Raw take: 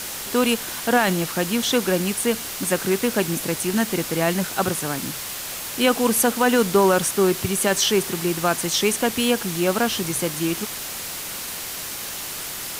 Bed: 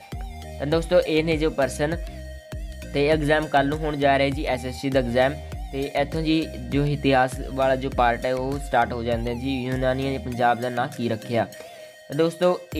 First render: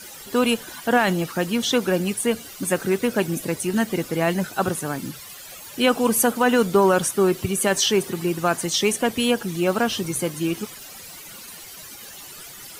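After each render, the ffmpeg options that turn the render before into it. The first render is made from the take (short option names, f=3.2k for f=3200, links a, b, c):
-af "afftdn=nr=14:nf=-32"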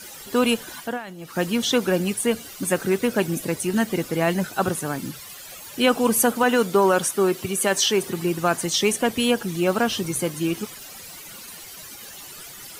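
-filter_complex "[0:a]asettb=1/sr,asplit=3[a][b][c];[a]atrim=end=6.434[d];[b]atrim=start=6.43:end=8.03,asetpts=PTS-STARTPTS,afade=t=in:d=0.004:c=qsin,afade=t=out:st=1.596:d=0.004:c=qsin,highpass=f=220:p=1[e];[c]atrim=start=8.026[f];[d][e]acrossfade=d=0.004:c1=hsin:c2=qsin[g];[g][f]acrossfade=d=0.004:c1=qsin:c2=hsin,asplit=3[h][i][j];[h]atrim=end=1.05,asetpts=PTS-STARTPTS,afade=t=out:st=0.8:d=0.25:c=qua:silence=0.141254[k];[i]atrim=start=1.05:end=1.14,asetpts=PTS-STARTPTS,volume=-17dB[l];[j]atrim=start=1.14,asetpts=PTS-STARTPTS,afade=t=in:d=0.25:c=qua:silence=0.141254[m];[k][l][m]concat=n=3:v=0:a=1"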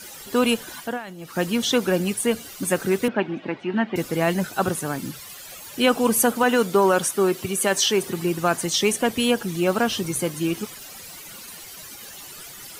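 -filter_complex "[0:a]asettb=1/sr,asplit=3[a][b][c];[a]atrim=end=3.084[d];[b]atrim=start=3.08:end=3.96,asetpts=PTS-STARTPTS,afade=t=in:d=0.004:c=qsin,afade=t=out:st=0.876:d=0.004:c=qsin,highpass=f=140:w=0.5412,highpass=f=140:w=1.3066,equalizer=f=160:t=q:w=4:g=-8,equalizer=f=480:t=q:w=4:g=-6,equalizer=f=830:t=q:w=4:g=4,lowpass=f=3k:w=0.5412,lowpass=f=3k:w=1.3066[e];[c]atrim=start=3.956[f];[d][e]acrossfade=d=0.004:c1=hsin:c2=qsin[g];[g][f]acrossfade=d=0.004:c1=qsin:c2=hsin"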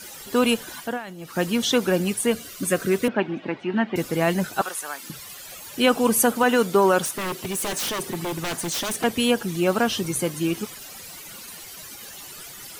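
-filter_complex "[0:a]asettb=1/sr,asplit=3[a][b][c];[a]atrim=end=2.344[d];[b]atrim=start=2.34:end=3.08,asetpts=PTS-STARTPTS,afade=t=in:d=0.004:c=qsin,afade=t=out:st=0.736:d=0.004:c=qsin,asuperstop=centerf=840:order=20:qfactor=4.4[e];[c]atrim=start=3.076[f];[d][e]acrossfade=d=0.004:c1=hsin:c2=qsin[g];[g][f]acrossfade=d=0.004:c1=qsin:c2=hsin,asettb=1/sr,asplit=3[h][i][j];[h]atrim=end=4.614[k];[i]atrim=start=4.61:end=5.1,asetpts=PTS-STARTPTS,afade=t=in:d=0.004:c=qsin,afade=t=out:st=0.486:d=0.004:c=qsin,highpass=870[l];[j]atrim=start=5.096[m];[k][l]acrossfade=d=0.004:c1=hsin:c2=qsin[n];[n][m]acrossfade=d=0.004:c1=qsin:c2=hsin,asettb=1/sr,asplit=3[o][p][q];[o]atrim=end=7.054[r];[p]atrim=start=7.05:end=9.04,asetpts=PTS-STARTPTS,afade=t=in:d=0.004:c=qsin,afade=t=out:st=1.986:d=0.004:c=qsin,aeval=exprs='0.0794*(abs(mod(val(0)/0.0794+3,4)-2)-1)':c=same[s];[q]atrim=start=9.036[t];[r][s]acrossfade=d=0.004:c1=hsin:c2=qsin[u];[u][t]acrossfade=d=0.004:c1=qsin:c2=hsin"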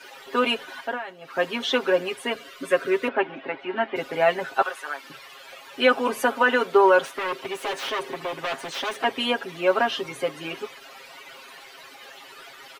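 -filter_complex "[0:a]acrossover=split=340 3700:gain=0.0891 1 0.0891[a][b][c];[a][b][c]amix=inputs=3:normalize=0,aecho=1:1:7.4:0.91"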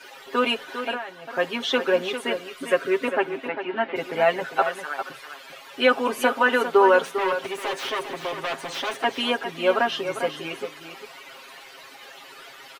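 -af "aecho=1:1:400:0.335"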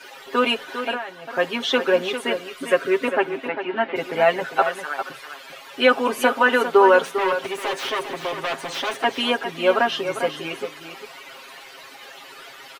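-af "volume=2.5dB"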